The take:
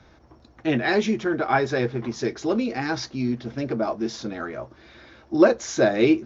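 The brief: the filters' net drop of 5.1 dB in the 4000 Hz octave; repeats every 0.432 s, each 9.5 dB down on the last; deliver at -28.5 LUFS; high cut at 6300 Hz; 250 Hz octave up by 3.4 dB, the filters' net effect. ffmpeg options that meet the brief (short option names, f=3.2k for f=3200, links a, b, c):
-af "lowpass=6.3k,equalizer=f=250:t=o:g=4.5,equalizer=f=4k:t=o:g=-5.5,aecho=1:1:432|864|1296|1728:0.335|0.111|0.0365|0.012,volume=-6.5dB"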